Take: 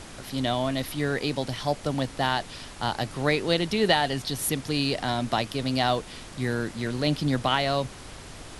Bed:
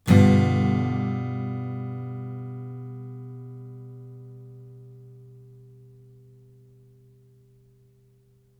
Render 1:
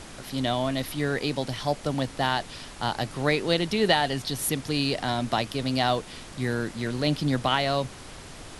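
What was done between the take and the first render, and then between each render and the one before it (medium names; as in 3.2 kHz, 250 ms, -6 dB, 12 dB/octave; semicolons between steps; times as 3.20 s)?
de-hum 50 Hz, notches 2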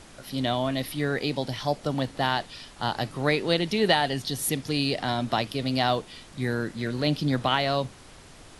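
noise print and reduce 6 dB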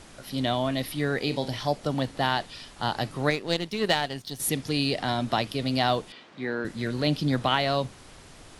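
1.22–1.68 s: flutter echo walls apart 7.3 m, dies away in 0.21 s; 3.30–4.40 s: power-law waveshaper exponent 1.4; 6.12–6.65 s: band-pass 260–3200 Hz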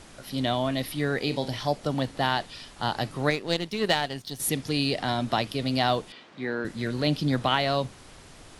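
no audible change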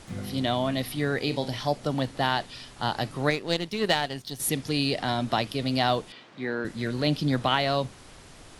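add bed -21.5 dB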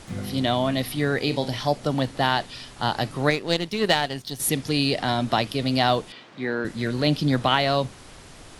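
trim +3.5 dB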